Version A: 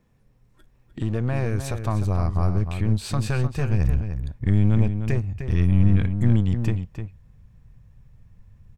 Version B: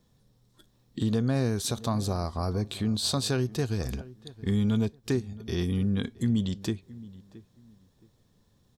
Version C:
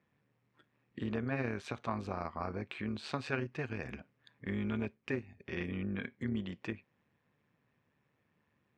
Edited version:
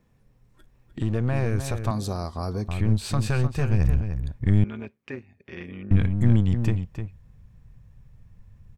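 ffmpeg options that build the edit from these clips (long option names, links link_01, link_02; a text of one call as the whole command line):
ffmpeg -i take0.wav -i take1.wav -i take2.wav -filter_complex "[0:a]asplit=3[link_01][link_02][link_03];[link_01]atrim=end=1.912[link_04];[1:a]atrim=start=1.908:end=2.682[link_05];[link_02]atrim=start=2.678:end=4.642[link_06];[2:a]atrim=start=4.638:end=5.912[link_07];[link_03]atrim=start=5.908[link_08];[link_04][link_05]acrossfade=duration=0.004:curve1=hsin:curve2=hsin[link_09];[link_09][link_06]acrossfade=duration=0.004:curve1=hsin:curve2=hsin[link_10];[link_10][link_07]acrossfade=duration=0.004:curve1=hsin:curve2=hsin[link_11];[link_11][link_08]acrossfade=duration=0.004:curve1=hsin:curve2=hsin" out.wav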